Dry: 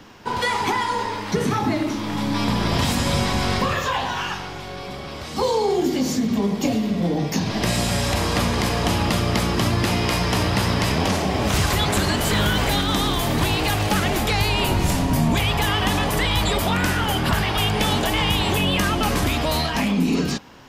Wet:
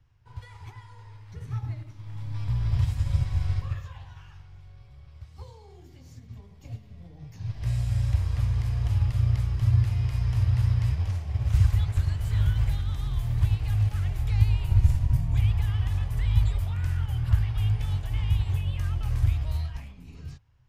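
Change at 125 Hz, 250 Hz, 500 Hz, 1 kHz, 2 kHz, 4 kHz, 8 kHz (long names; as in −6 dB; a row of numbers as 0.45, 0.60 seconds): 0.0 dB, −21.0 dB, −27.0 dB, −24.5 dB, −22.0 dB, −23.5 dB, below −20 dB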